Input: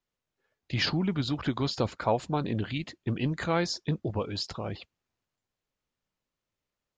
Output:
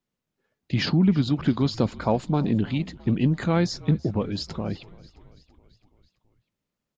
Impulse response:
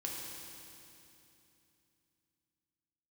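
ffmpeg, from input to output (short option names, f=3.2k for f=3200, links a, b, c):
-filter_complex "[0:a]equalizer=f=200:t=o:w=1.6:g=10.5,asplit=2[a][b];[b]asplit=5[c][d][e][f][g];[c]adelay=332,afreqshift=-44,volume=-21dB[h];[d]adelay=664,afreqshift=-88,volume=-25dB[i];[e]adelay=996,afreqshift=-132,volume=-29dB[j];[f]adelay=1328,afreqshift=-176,volume=-33dB[k];[g]adelay=1660,afreqshift=-220,volume=-37.1dB[l];[h][i][j][k][l]amix=inputs=5:normalize=0[m];[a][m]amix=inputs=2:normalize=0"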